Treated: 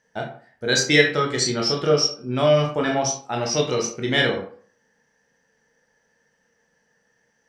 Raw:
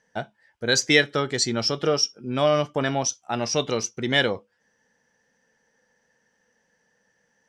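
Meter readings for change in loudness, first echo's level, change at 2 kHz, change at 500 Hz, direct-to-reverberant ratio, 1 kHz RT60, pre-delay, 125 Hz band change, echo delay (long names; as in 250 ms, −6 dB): +2.5 dB, no echo audible, +2.0 dB, +3.5 dB, 0.0 dB, 0.50 s, 16 ms, +4.0 dB, no echo audible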